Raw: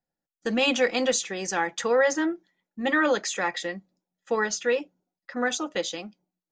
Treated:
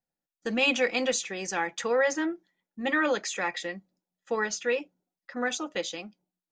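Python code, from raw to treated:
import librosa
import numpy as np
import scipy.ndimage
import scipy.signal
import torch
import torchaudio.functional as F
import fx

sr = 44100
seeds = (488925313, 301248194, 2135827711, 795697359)

y = fx.dynamic_eq(x, sr, hz=2400.0, q=4.0, threshold_db=-45.0, ratio=4.0, max_db=6)
y = F.gain(torch.from_numpy(y), -3.5).numpy()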